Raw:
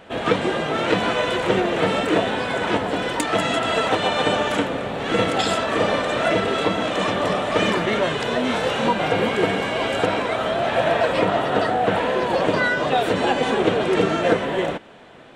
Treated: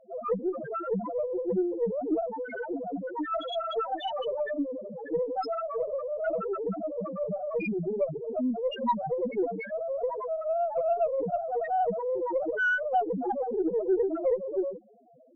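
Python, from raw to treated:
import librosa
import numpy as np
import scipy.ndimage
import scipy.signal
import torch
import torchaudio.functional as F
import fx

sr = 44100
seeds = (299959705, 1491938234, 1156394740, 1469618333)

y = fx.high_shelf(x, sr, hz=5600.0, db=10.0)
y = fx.spec_topn(y, sr, count=1)
y = fx.cheby_harmonics(y, sr, harmonics=(4,), levels_db=(-30,), full_scale_db=-19.5)
y = y * 10.0 ** (2.0 / 20.0)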